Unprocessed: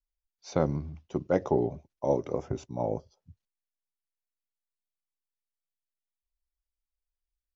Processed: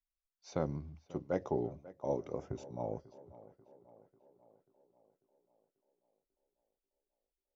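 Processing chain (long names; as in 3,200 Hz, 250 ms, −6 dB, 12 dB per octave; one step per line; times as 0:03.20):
tape delay 541 ms, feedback 60%, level −17 dB, low-pass 3,000 Hz
level −8.5 dB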